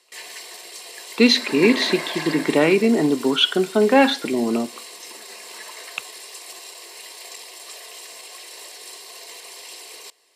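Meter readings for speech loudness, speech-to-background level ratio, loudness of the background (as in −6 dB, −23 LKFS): −18.5 LKFS, 15.5 dB, −34.0 LKFS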